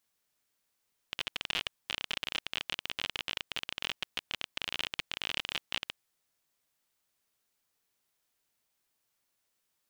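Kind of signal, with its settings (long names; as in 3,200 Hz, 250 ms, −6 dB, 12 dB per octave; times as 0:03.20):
Geiger counter clicks 33 per second −16 dBFS 4.78 s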